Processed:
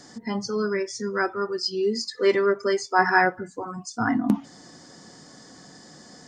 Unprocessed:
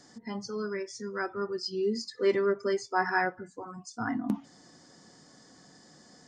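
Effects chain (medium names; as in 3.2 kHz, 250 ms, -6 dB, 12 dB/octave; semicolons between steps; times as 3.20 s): 1.30–2.99 s: bass shelf 330 Hz -8 dB; trim +8.5 dB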